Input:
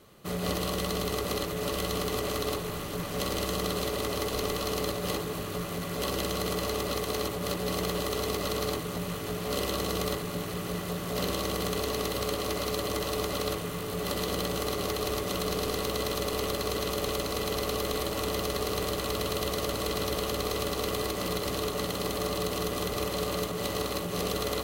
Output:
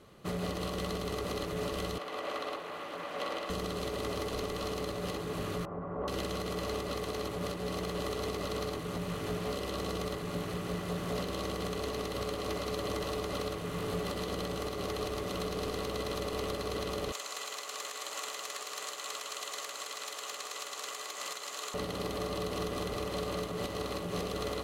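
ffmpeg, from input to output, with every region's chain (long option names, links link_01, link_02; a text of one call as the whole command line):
ffmpeg -i in.wav -filter_complex "[0:a]asettb=1/sr,asplit=3[link_01][link_02][link_03];[link_01]atrim=end=1.984[link_04];[link_02]atrim=start=1.98:end=3.5,asetpts=PTS-STARTPTS,afade=type=in:duration=0.004:curve=qsin,afade=type=out:start_time=1.516:duration=0.004:curve=qsin,highpass=frequency=110:poles=1,acrossover=split=330 3500:gain=0.0794 1 0.251[link_05][link_06][link_07];[link_05][link_06][link_07]amix=inputs=3:normalize=0,bandreject=frequency=410:width=5.5[link_08];[link_03]atrim=start=3.496[link_09];[link_04][link_08]acrossfade=duration=0.004:curve1=hsin:curve2=qsin[link_10];[link_10][link_09]acrossfade=duration=0.004:curve1=qsin:curve2=hsin,asettb=1/sr,asplit=3[link_11][link_12][link_13];[link_11]atrim=end=5.654[link_14];[link_12]atrim=start=5.65:end=6.08,asetpts=PTS-STARTPTS,afade=type=in:duration=0.004:curve=qsin,afade=type=out:start_time=0.426:duration=0.004:curve=qsin,lowpass=frequency=1100:width=0.5412,lowpass=frequency=1100:width=1.3066,tiltshelf=frequency=800:gain=-5.5[link_15];[link_13]atrim=start=6.076[link_16];[link_14][link_15]acrossfade=duration=0.004:curve1=hsin:curve2=qsin[link_17];[link_17][link_16]acrossfade=duration=0.004:curve1=qsin:curve2=hsin,asettb=1/sr,asplit=3[link_18][link_19][link_20];[link_18]atrim=end=17.124[link_21];[link_19]atrim=start=17.12:end=21.74,asetpts=PTS-STARTPTS,afade=type=in:duration=0.004:curve=qsin,afade=type=out:start_time=4.616:duration=0.004:curve=qsin,equalizer=frequency=7100:width_type=o:width=0.36:gain=12.5,aeval=exprs='(mod(9.44*val(0)+1,2)-1)/9.44':channel_layout=same,highpass=1000[link_22];[link_20]atrim=start=21.736[link_23];[link_21][link_22]acrossfade=duration=0.004:curve1=hsin:curve2=qsin[link_24];[link_24][link_23]acrossfade=duration=0.004:curve1=qsin:curve2=hsin,highshelf=frequency=4200:gain=-6,alimiter=level_in=1dB:limit=-24dB:level=0:latency=1:release=360,volume=-1dB,lowpass=12000" out.wav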